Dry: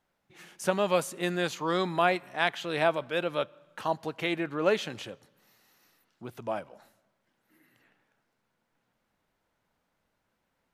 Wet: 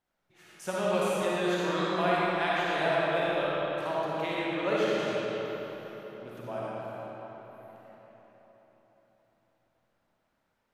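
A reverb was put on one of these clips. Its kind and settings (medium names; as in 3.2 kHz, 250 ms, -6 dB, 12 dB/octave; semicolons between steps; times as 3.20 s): algorithmic reverb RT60 4.5 s, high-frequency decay 0.65×, pre-delay 15 ms, DRR -8 dB; trim -8 dB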